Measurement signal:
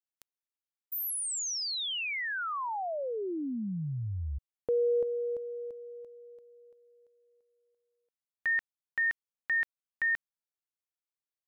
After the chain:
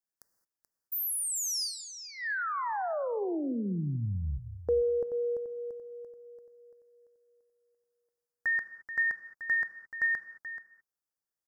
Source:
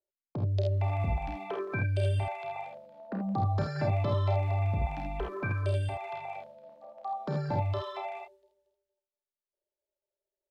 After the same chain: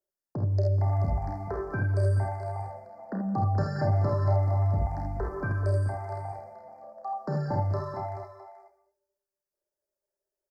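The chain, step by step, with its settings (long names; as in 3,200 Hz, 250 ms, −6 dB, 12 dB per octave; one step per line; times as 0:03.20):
Chebyshev band-stop filter 1,800–4,800 Hz, order 3
single-tap delay 431 ms −12 dB
reverb whose tail is shaped and stops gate 240 ms flat, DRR 12 dB
level +2 dB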